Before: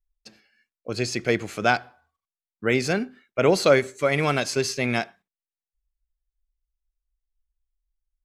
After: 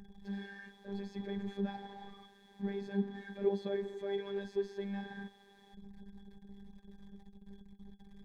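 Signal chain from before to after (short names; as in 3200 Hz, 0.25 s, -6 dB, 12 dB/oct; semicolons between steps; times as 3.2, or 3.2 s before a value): zero-crossing step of -20 dBFS; octave resonator G#, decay 0.13 s; robotiser 199 Hz; gain -5.5 dB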